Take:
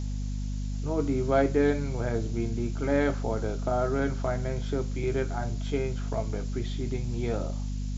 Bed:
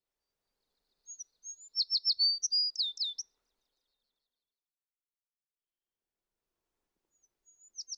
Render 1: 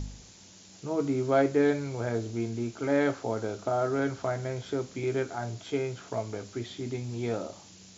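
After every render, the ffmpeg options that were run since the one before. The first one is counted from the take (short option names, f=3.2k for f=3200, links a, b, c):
-af "bandreject=f=50:t=h:w=4,bandreject=f=100:t=h:w=4,bandreject=f=150:t=h:w=4,bandreject=f=200:t=h:w=4,bandreject=f=250:t=h:w=4"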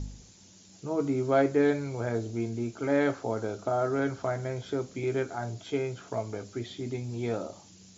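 -af "afftdn=nr=6:nf=-53"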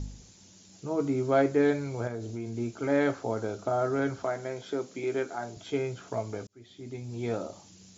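-filter_complex "[0:a]asettb=1/sr,asplit=3[a][b][c];[a]atrim=end=2.074[d];[b]atrim=start=2.07:end=2.58,asetpts=PTS-STARTPTS,afade=t=in:d=0.004:c=qsin,afade=t=out:st=0.506:d=0.004:c=qsin,acompressor=threshold=-32dB:ratio=4:attack=3.2:release=140:knee=1:detection=peak[e];[c]atrim=start=2.576[f];[d][e]acrossfade=d=0.004:c1=hsin:c2=qsin[g];[g][f]acrossfade=d=0.004:c1=qsin:c2=hsin,asettb=1/sr,asplit=3[h][i][j];[h]atrim=end=4.244[k];[i]atrim=start=4.24:end=5.57,asetpts=PTS-STARTPTS,afade=t=in:d=0.004:c=qsin,afade=t=out:st=1.326:d=0.004:c=qsin,highpass=220[l];[j]atrim=start=5.566[m];[k][l]acrossfade=d=0.004:c1=hsin:c2=qsin[n];[n][m]acrossfade=d=0.004:c1=qsin:c2=hsin,asplit=2[o][p];[o]atrim=end=6.47,asetpts=PTS-STARTPTS,afade=t=out:st=6.466:d=0.004:c=hsin[q];[p]atrim=start=6.47,asetpts=PTS-STARTPTS,afade=t=in:d=0.86[r];[q][r]concat=n=2:v=0:a=1"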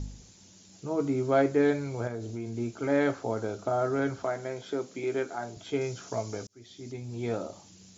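-filter_complex "[0:a]asettb=1/sr,asplit=3[a][b][c];[a]atrim=end=5.814[d];[b]atrim=start=5.81:end=6.92,asetpts=PTS-STARTPTS,afade=t=in:d=0.004:c=qsin,afade=t=out:st=1.106:d=0.004:c=qsin,equalizer=f=5.7k:w=1.4:g=9.5[e];[c]atrim=start=6.916[f];[d][e]acrossfade=d=0.004:c1=hsin:c2=qsin[g];[g][f]acrossfade=d=0.004:c1=qsin:c2=hsin"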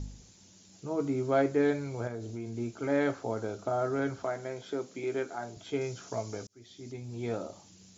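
-af "volume=-2.5dB"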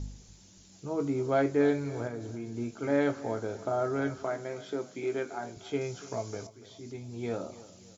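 -filter_complex "[0:a]asplit=2[a][b];[b]adelay=21,volume=-13.5dB[c];[a][c]amix=inputs=2:normalize=0,aecho=1:1:287|574|861:0.133|0.0547|0.0224"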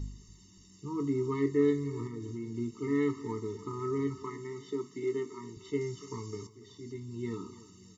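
-af "afftfilt=real='re*eq(mod(floor(b*sr/1024/440),2),0)':imag='im*eq(mod(floor(b*sr/1024/440),2),0)':win_size=1024:overlap=0.75"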